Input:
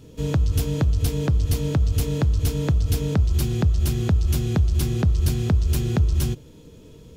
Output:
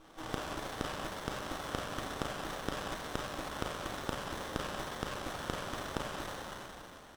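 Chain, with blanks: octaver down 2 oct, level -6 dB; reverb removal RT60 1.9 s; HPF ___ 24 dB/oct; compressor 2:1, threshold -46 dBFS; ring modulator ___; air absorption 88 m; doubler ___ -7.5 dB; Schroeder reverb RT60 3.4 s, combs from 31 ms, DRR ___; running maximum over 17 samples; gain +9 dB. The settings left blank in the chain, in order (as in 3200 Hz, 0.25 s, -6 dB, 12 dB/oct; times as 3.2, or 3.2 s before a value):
930 Hz, 160 Hz, 38 ms, -7 dB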